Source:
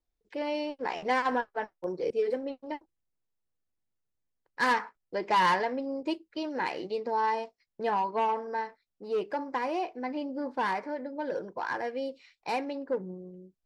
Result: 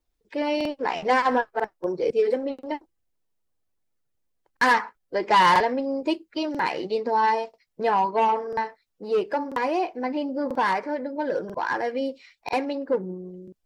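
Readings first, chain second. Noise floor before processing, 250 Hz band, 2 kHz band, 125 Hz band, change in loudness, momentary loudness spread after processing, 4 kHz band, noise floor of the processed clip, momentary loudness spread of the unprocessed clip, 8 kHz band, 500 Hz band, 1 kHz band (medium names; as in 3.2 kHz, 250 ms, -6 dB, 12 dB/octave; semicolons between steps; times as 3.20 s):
-83 dBFS, +6.5 dB, +6.5 dB, +6.5 dB, +6.5 dB, 11 LU, +7.0 dB, -75 dBFS, 12 LU, no reading, +6.5 dB, +6.5 dB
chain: coarse spectral quantiser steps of 15 dB; crackling interface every 0.99 s, samples 2048, repeat, from 0.56 s; trim +7 dB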